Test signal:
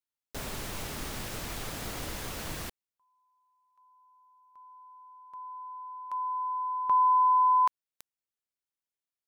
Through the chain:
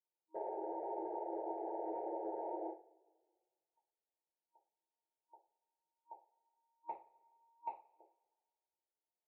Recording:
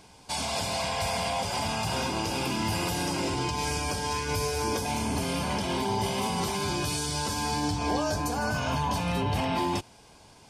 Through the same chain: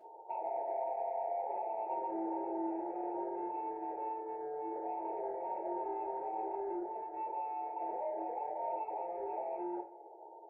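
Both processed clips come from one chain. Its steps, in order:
brick-wall band-pass 320–940 Hz
brickwall limiter −28 dBFS
downward compressor 4 to 1, threshold −41 dBFS
soft clipping −32 dBFS
coupled-rooms reverb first 0.32 s, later 1.6 s, from −25 dB, DRR −6.5 dB
level −2 dB

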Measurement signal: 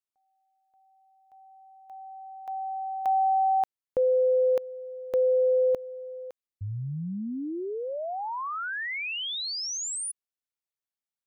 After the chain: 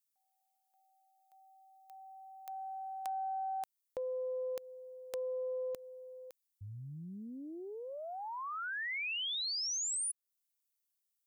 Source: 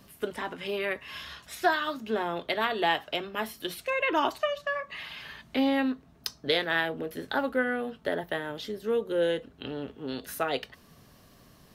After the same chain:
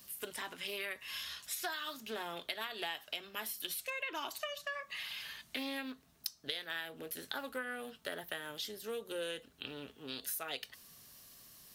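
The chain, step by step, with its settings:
first-order pre-emphasis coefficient 0.9
downward compressor 6 to 1, threshold −43 dBFS
highs frequency-modulated by the lows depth 0.13 ms
level +7 dB

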